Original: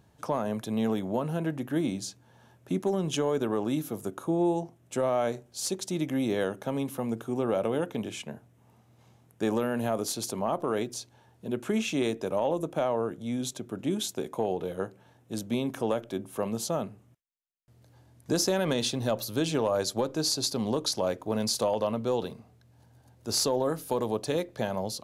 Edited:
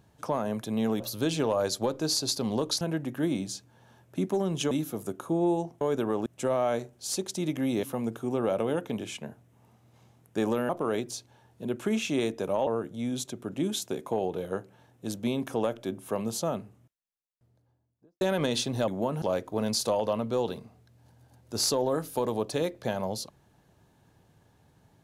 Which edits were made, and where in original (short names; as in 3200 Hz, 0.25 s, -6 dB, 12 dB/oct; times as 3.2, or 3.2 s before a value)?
1–1.34 swap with 19.15–20.96
3.24–3.69 move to 4.79
6.36–6.88 cut
9.74–10.52 cut
12.5–12.94 cut
16.87–18.48 studio fade out